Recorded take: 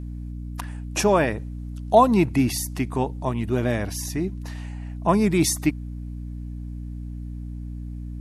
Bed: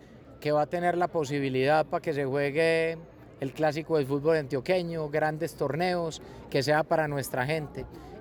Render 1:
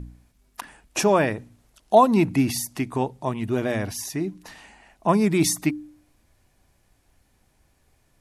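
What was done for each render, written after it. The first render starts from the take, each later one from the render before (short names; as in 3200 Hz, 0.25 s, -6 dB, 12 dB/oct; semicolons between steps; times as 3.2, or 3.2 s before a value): de-hum 60 Hz, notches 5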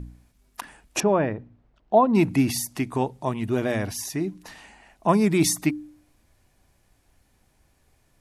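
1–2.15 tape spacing loss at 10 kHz 38 dB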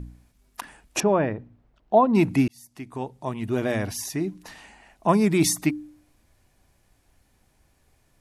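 2.48–3.68 fade in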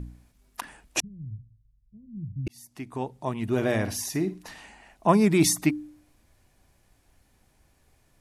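1–2.47 inverse Chebyshev low-pass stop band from 730 Hz, stop band 80 dB; 3.44–4.49 flutter echo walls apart 9.3 m, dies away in 0.26 s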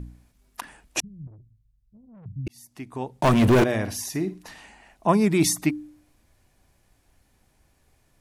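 1.27–2.26 tube stage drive 46 dB, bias 0.35; 3.21–3.64 sample leveller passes 5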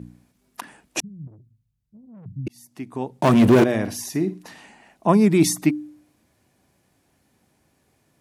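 HPF 200 Hz 12 dB/oct; low shelf 280 Hz +11.5 dB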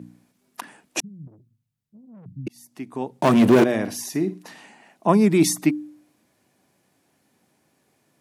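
HPF 150 Hz 12 dB/oct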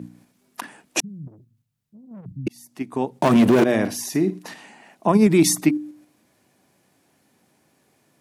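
in parallel at +1 dB: level quantiser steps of 15 dB; on the sum: limiter -6.5 dBFS, peak gain reduction 8 dB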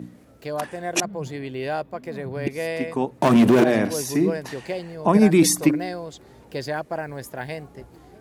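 add bed -3.5 dB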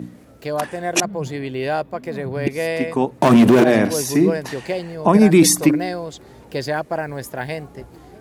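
gain +5 dB; limiter -3 dBFS, peak gain reduction 3 dB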